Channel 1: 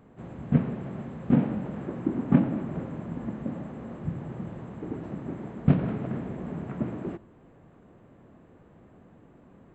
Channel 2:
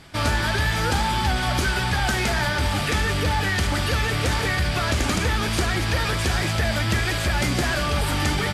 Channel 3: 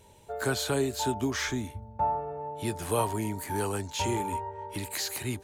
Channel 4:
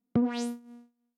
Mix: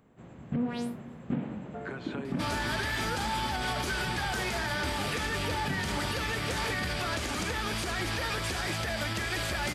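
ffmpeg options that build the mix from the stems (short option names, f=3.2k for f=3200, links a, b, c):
-filter_complex "[0:a]highshelf=f=2.3k:g=9.5,volume=-8dB[a];[1:a]acrossover=split=220|3000[b][c][d];[b]acompressor=threshold=-29dB:ratio=6[e];[e][c][d]amix=inputs=3:normalize=0,adelay=2250,volume=-5dB[f];[2:a]lowpass=f=2.3k:t=q:w=1.9,acompressor=threshold=-33dB:ratio=6,adelay=1450,volume=-4dB[g];[3:a]equalizer=f=6.4k:t=o:w=0.68:g=-9.5,adelay=400,volume=-1.5dB[h];[a][f][g][h]amix=inputs=4:normalize=0,alimiter=limit=-22dB:level=0:latency=1:release=83"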